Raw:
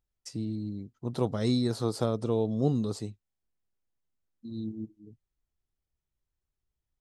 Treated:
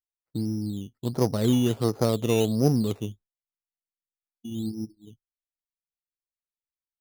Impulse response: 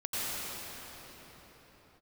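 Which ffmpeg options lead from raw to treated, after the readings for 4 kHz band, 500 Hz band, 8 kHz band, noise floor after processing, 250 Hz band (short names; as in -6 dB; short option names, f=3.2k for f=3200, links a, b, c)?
+5.0 dB, +4.5 dB, +8.5 dB, under -85 dBFS, +5.0 dB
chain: -af "adynamicsmooth=sensitivity=3:basefreq=1.1k,acrusher=samples=11:mix=1:aa=0.000001:lfo=1:lforange=6.6:lforate=1.4,agate=range=-33dB:threshold=-47dB:ratio=3:detection=peak,volume=5dB"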